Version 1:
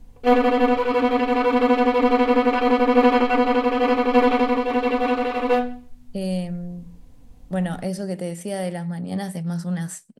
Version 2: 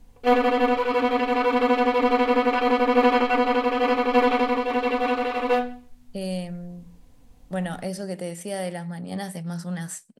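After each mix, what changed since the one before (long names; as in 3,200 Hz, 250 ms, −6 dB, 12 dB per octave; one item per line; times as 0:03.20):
master: add low-shelf EQ 410 Hz −6 dB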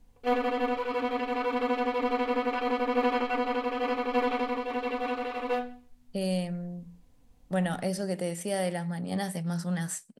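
background −8.0 dB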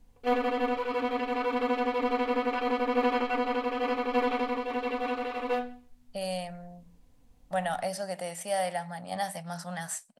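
speech: add low shelf with overshoot 520 Hz −9 dB, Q 3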